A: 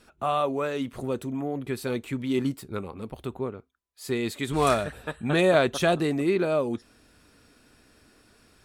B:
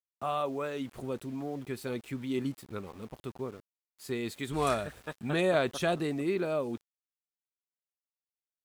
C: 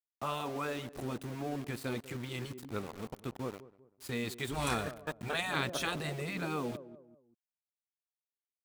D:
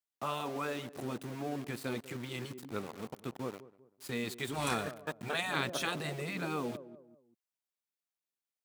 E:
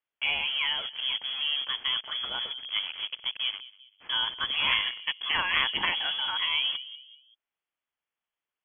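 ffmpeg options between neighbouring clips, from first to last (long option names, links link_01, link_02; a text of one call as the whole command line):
ffmpeg -i in.wav -af "aeval=exprs='val(0)*gte(abs(val(0)),0.00631)':channel_layout=same,volume=-6.5dB" out.wav
ffmpeg -i in.wav -filter_complex "[0:a]aeval=exprs='val(0)*gte(abs(val(0)),0.00631)':channel_layout=same,asplit=2[link_01][link_02];[link_02]adelay=194,lowpass=frequency=1000:poles=1,volume=-18dB,asplit=2[link_03][link_04];[link_04]adelay=194,lowpass=frequency=1000:poles=1,volume=0.4,asplit=2[link_05][link_06];[link_06]adelay=194,lowpass=frequency=1000:poles=1,volume=0.4[link_07];[link_01][link_03][link_05][link_07]amix=inputs=4:normalize=0,afftfilt=real='re*lt(hypot(re,im),0.141)':imag='im*lt(hypot(re,im),0.141)':win_size=1024:overlap=0.75,volume=1.5dB" out.wav
ffmpeg -i in.wav -af "highpass=120" out.wav
ffmpeg -i in.wav -af "lowpass=frequency=3000:width_type=q:width=0.5098,lowpass=frequency=3000:width_type=q:width=0.6013,lowpass=frequency=3000:width_type=q:width=0.9,lowpass=frequency=3000:width_type=q:width=2.563,afreqshift=-3500,volume=8dB" out.wav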